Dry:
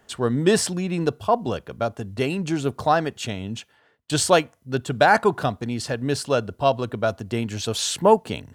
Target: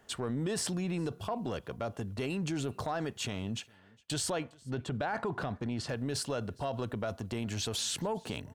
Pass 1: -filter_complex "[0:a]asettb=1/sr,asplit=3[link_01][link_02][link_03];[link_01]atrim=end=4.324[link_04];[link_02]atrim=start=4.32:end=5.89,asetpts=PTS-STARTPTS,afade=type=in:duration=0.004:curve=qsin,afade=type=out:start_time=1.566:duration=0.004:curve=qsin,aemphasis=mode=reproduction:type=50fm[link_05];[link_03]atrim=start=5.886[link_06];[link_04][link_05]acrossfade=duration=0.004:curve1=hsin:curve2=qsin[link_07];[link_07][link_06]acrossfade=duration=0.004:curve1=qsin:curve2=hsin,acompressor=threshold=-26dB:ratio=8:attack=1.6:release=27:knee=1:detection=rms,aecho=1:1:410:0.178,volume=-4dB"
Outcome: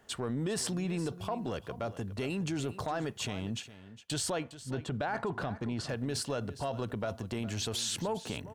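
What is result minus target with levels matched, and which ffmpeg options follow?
echo-to-direct +11 dB
-filter_complex "[0:a]asettb=1/sr,asplit=3[link_01][link_02][link_03];[link_01]atrim=end=4.324[link_04];[link_02]atrim=start=4.32:end=5.89,asetpts=PTS-STARTPTS,afade=type=in:duration=0.004:curve=qsin,afade=type=out:start_time=1.566:duration=0.004:curve=qsin,aemphasis=mode=reproduction:type=50fm[link_05];[link_03]atrim=start=5.886[link_06];[link_04][link_05]acrossfade=duration=0.004:curve1=hsin:curve2=qsin[link_07];[link_07][link_06]acrossfade=duration=0.004:curve1=qsin:curve2=hsin,acompressor=threshold=-26dB:ratio=8:attack=1.6:release=27:knee=1:detection=rms,aecho=1:1:410:0.0501,volume=-4dB"

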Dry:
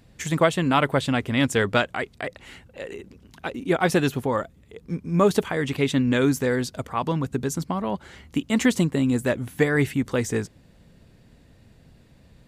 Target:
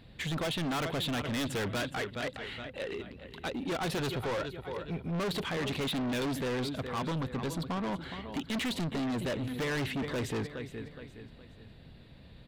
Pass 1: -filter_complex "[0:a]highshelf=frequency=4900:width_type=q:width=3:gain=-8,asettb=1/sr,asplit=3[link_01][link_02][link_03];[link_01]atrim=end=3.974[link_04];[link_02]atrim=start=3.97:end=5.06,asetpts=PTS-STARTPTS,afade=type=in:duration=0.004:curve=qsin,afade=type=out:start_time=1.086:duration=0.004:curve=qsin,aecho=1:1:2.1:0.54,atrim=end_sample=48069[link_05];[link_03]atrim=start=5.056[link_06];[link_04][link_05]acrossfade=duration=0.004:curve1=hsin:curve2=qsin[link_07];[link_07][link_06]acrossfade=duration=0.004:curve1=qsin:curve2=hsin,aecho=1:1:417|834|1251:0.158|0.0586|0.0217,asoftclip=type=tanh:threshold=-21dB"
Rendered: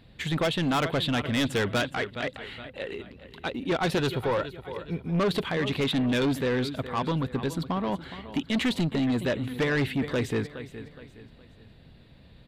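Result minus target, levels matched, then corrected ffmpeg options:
soft clipping: distortion −5 dB
-filter_complex "[0:a]highshelf=frequency=4900:width_type=q:width=3:gain=-8,asettb=1/sr,asplit=3[link_01][link_02][link_03];[link_01]atrim=end=3.974[link_04];[link_02]atrim=start=3.97:end=5.06,asetpts=PTS-STARTPTS,afade=type=in:duration=0.004:curve=qsin,afade=type=out:start_time=1.086:duration=0.004:curve=qsin,aecho=1:1:2.1:0.54,atrim=end_sample=48069[link_05];[link_03]atrim=start=5.056[link_06];[link_04][link_05]acrossfade=duration=0.004:curve1=hsin:curve2=qsin[link_07];[link_07][link_06]acrossfade=duration=0.004:curve1=qsin:curve2=hsin,aecho=1:1:417|834|1251:0.158|0.0586|0.0217,asoftclip=type=tanh:threshold=-30.5dB"

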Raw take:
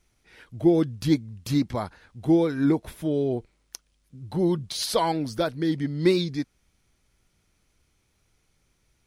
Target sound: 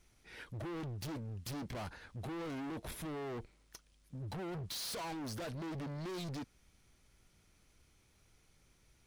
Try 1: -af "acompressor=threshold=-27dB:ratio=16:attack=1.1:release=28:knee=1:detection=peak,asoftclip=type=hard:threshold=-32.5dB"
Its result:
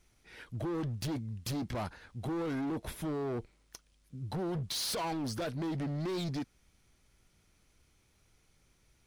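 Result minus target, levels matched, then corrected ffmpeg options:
hard clipping: distortion −5 dB
-af "acompressor=threshold=-27dB:ratio=16:attack=1.1:release=28:knee=1:detection=peak,asoftclip=type=hard:threshold=-40.5dB"

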